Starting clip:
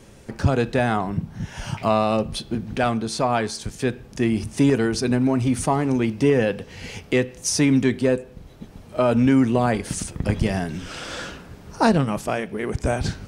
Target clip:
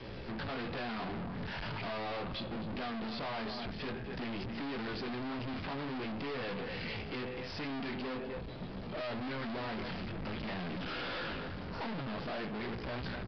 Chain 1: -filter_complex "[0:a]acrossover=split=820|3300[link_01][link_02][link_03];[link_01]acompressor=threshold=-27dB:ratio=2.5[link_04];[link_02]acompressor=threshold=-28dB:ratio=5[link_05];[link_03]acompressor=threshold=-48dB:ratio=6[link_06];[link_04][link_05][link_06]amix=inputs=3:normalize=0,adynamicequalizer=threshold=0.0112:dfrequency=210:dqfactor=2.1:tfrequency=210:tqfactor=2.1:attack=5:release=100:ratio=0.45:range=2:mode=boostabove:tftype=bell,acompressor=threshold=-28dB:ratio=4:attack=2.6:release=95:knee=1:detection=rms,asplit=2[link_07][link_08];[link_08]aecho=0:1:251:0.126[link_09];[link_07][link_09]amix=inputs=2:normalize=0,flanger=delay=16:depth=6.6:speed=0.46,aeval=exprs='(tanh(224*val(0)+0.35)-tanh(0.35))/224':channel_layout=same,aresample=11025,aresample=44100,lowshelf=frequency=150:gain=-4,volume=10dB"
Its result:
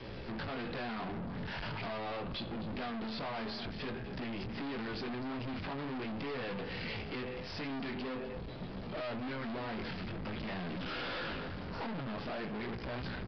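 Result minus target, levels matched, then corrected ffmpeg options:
downward compressor: peak gain reduction +10.5 dB
-filter_complex "[0:a]acrossover=split=820|3300[link_01][link_02][link_03];[link_01]acompressor=threshold=-27dB:ratio=2.5[link_04];[link_02]acompressor=threshold=-28dB:ratio=5[link_05];[link_03]acompressor=threshold=-48dB:ratio=6[link_06];[link_04][link_05][link_06]amix=inputs=3:normalize=0,adynamicequalizer=threshold=0.0112:dfrequency=210:dqfactor=2.1:tfrequency=210:tqfactor=2.1:attack=5:release=100:ratio=0.45:range=2:mode=boostabove:tftype=bell,asplit=2[link_07][link_08];[link_08]aecho=0:1:251:0.126[link_09];[link_07][link_09]amix=inputs=2:normalize=0,flanger=delay=16:depth=6.6:speed=0.46,aeval=exprs='(tanh(224*val(0)+0.35)-tanh(0.35))/224':channel_layout=same,aresample=11025,aresample=44100,lowshelf=frequency=150:gain=-4,volume=10dB"

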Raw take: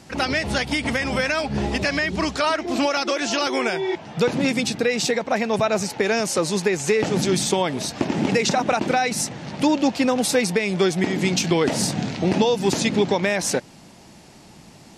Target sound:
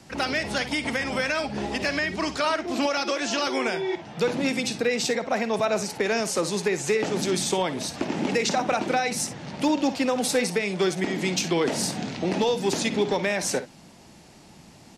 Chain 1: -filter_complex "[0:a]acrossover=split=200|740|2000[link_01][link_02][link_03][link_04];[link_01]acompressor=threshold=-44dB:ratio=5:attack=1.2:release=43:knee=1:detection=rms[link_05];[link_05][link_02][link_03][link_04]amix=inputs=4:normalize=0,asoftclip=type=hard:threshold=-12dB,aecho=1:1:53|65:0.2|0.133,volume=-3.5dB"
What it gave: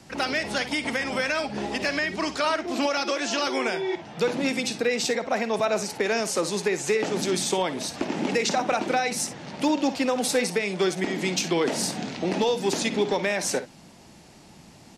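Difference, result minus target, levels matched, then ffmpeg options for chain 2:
downward compressor: peak gain reduction +7 dB
-filter_complex "[0:a]acrossover=split=200|740|2000[link_01][link_02][link_03][link_04];[link_01]acompressor=threshold=-35.5dB:ratio=5:attack=1.2:release=43:knee=1:detection=rms[link_05];[link_05][link_02][link_03][link_04]amix=inputs=4:normalize=0,asoftclip=type=hard:threshold=-12dB,aecho=1:1:53|65:0.2|0.133,volume=-3.5dB"

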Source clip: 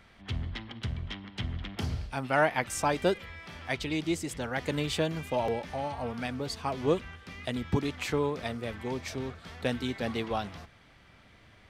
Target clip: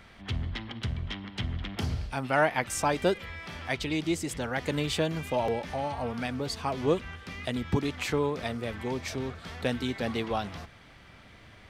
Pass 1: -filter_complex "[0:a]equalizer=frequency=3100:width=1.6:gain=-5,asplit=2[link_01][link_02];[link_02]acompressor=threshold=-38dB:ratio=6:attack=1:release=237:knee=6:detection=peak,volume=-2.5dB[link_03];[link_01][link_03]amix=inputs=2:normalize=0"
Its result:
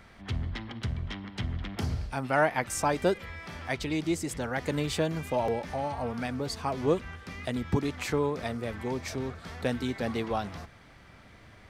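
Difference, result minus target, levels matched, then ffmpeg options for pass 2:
4,000 Hz band −3.0 dB
-filter_complex "[0:a]asplit=2[link_01][link_02];[link_02]acompressor=threshold=-38dB:ratio=6:attack=1:release=237:knee=6:detection=peak,volume=-2.5dB[link_03];[link_01][link_03]amix=inputs=2:normalize=0"

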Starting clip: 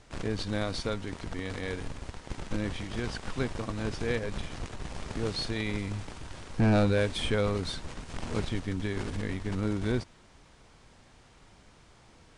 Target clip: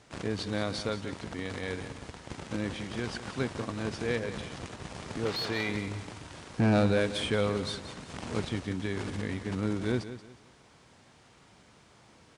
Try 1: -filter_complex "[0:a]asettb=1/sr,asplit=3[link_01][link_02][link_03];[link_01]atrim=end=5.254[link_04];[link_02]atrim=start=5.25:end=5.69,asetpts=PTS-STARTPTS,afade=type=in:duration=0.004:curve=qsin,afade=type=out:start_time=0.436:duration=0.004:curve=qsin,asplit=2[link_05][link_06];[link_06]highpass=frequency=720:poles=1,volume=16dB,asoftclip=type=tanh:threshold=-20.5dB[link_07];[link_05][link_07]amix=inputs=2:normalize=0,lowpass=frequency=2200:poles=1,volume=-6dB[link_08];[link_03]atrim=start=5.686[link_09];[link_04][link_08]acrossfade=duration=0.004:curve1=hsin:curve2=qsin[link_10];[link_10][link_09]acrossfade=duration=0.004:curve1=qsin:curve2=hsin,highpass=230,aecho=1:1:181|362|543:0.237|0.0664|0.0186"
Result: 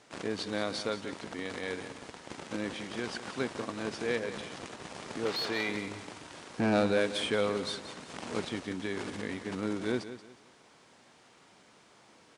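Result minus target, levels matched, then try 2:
125 Hz band −8.0 dB
-filter_complex "[0:a]asettb=1/sr,asplit=3[link_01][link_02][link_03];[link_01]atrim=end=5.254[link_04];[link_02]atrim=start=5.25:end=5.69,asetpts=PTS-STARTPTS,afade=type=in:duration=0.004:curve=qsin,afade=type=out:start_time=0.436:duration=0.004:curve=qsin,asplit=2[link_05][link_06];[link_06]highpass=frequency=720:poles=1,volume=16dB,asoftclip=type=tanh:threshold=-20.5dB[link_07];[link_05][link_07]amix=inputs=2:normalize=0,lowpass=frequency=2200:poles=1,volume=-6dB[link_08];[link_03]atrim=start=5.686[link_09];[link_04][link_08]acrossfade=duration=0.004:curve1=hsin:curve2=qsin[link_10];[link_10][link_09]acrossfade=duration=0.004:curve1=qsin:curve2=hsin,highpass=96,aecho=1:1:181|362|543:0.237|0.0664|0.0186"

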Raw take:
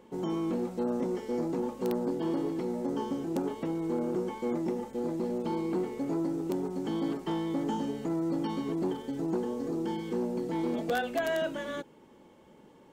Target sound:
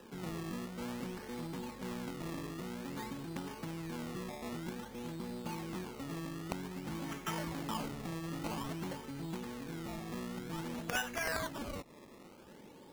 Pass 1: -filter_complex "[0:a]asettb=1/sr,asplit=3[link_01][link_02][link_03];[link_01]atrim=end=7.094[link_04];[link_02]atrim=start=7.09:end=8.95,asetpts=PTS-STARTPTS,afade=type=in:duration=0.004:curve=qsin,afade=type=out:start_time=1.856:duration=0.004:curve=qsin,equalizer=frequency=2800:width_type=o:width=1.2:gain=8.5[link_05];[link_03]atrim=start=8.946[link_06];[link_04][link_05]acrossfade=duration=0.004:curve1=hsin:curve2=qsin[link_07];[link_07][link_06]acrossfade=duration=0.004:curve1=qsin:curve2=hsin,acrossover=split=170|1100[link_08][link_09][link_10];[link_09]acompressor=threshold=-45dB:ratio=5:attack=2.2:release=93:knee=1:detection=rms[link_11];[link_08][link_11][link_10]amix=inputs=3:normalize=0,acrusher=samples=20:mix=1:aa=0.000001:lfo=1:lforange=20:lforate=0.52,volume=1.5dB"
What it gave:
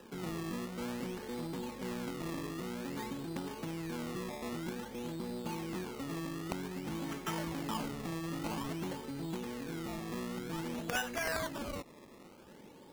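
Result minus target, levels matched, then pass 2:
downward compressor: peak gain reduction −5 dB
-filter_complex "[0:a]asettb=1/sr,asplit=3[link_01][link_02][link_03];[link_01]atrim=end=7.094[link_04];[link_02]atrim=start=7.09:end=8.95,asetpts=PTS-STARTPTS,afade=type=in:duration=0.004:curve=qsin,afade=type=out:start_time=1.856:duration=0.004:curve=qsin,equalizer=frequency=2800:width_type=o:width=1.2:gain=8.5[link_05];[link_03]atrim=start=8.946[link_06];[link_04][link_05]acrossfade=duration=0.004:curve1=hsin:curve2=qsin[link_07];[link_07][link_06]acrossfade=duration=0.004:curve1=qsin:curve2=hsin,acrossover=split=170|1100[link_08][link_09][link_10];[link_09]acompressor=threshold=-51.5dB:ratio=5:attack=2.2:release=93:knee=1:detection=rms[link_11];[link_08][link_11][link_10]amix=inputs=3:normalize=0,acrusher=samples=20:mix=1:aa=0.000001:lfo=1:lforange=20:lforate=0.52,volume=1.5dB"

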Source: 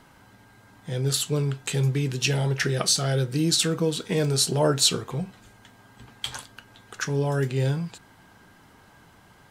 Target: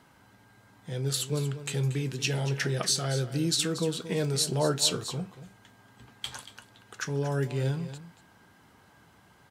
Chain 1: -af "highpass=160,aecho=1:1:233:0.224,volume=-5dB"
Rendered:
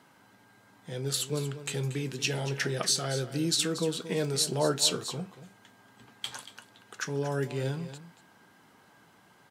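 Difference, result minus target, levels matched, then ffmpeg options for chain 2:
125 Hz band −3.5 dB
-af "highpass=56,aecho=1:1:233:0.224,volume=-5dB"

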